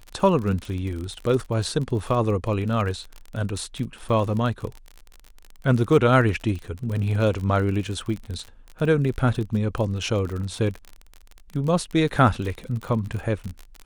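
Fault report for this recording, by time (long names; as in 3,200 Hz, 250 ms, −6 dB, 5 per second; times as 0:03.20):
surface crackle 39 per second −29 dBFS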